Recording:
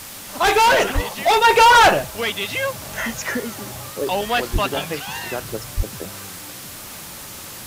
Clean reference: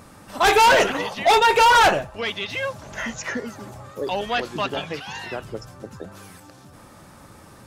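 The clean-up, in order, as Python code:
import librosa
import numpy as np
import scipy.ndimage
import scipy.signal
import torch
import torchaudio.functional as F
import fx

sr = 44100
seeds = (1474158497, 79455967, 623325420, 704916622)

y = fx.highpass(x, sr, hz=140.0, slope=24, at=(0.94, 1.06), fade=0.02)
y = fx.highpass(y, sr, hz=140.0, slope=24, at=(4.52, 4.64), fade=0.02)
y = fx.highpass(y, sr, hz=140.0, slope=24, at=(5.76, 5.88), fade=0.02)
y = fx.noise_reduce(y, sr, print_start_s=6.7, print_end_s=7.2, reduce_db=11.0)
y = fx.fix_level(y, sr, at_s=1.44, step_db=-3.5)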